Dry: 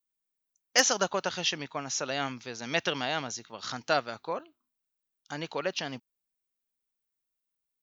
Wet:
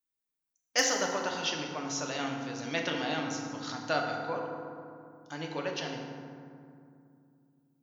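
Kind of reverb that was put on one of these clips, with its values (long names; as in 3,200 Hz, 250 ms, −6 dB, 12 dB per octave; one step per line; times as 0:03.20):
feedback delay network reverb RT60 2.4 s, low-frequency decay 1.55×, high-frequency decay 0.45×, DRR 0 dB
level −5 dB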